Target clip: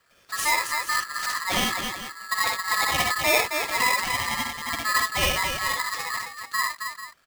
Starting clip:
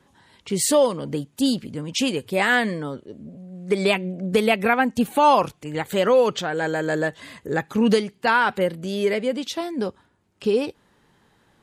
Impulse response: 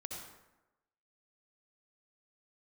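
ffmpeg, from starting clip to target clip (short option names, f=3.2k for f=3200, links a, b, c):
-af "atempo=1.6,aecho=1:1:60|78|269|441:0.708|0.422|0.531|0.251,aeval=exprs='val(0)*sgn(sin(2*PI*1500*n/s))':c=same,volume=-6.5dB"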